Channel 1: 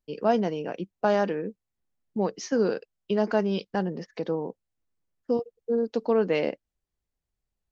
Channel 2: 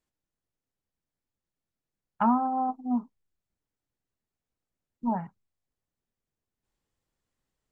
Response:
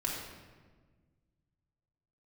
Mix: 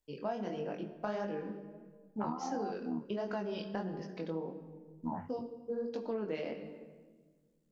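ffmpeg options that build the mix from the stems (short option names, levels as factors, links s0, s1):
-filter_complex "[0:a]bandreject=f=60:t=h:w=6,bandreject=f=120:t=h:w=6,bandreject=f=180:t=h:w=6,bandreject=f=240:t=h:w=6,bandreject=f=300:t=h:w=6,bandreject=f=360:t=h:w=6,bandreject=f=420:t=h:w=6,aphaser=in_gain=1:out_gain=1:delay=1.3:decay=0.24:speed=1.6:type=triangular,volume=0.473,asplit=2[s0][s1];[s1]volume=0.316[s2];[1:a]highshelf=f=5800:g=8.5,tremolo=f=74:d=0.857,volume=1[s3];[2:a]atrim=start_sample=2205[s4];[s2][s4]afir=irnorm=-1:irlink=0[s5];[s0][s3][s5]amix=inputs=3:normalize=0,flanger=delay=19.5:depth=6.1:speed=1.5,acompressor=threshold=0.0224:ratio=6"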